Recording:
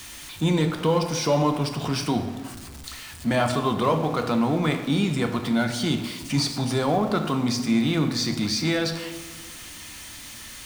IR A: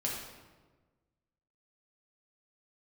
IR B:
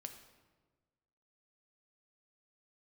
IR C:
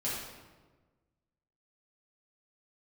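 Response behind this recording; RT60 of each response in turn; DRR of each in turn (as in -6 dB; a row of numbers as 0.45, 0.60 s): B; 1.3, 1.4, 1.3 s; -3.5, 6.0, -8.5 dB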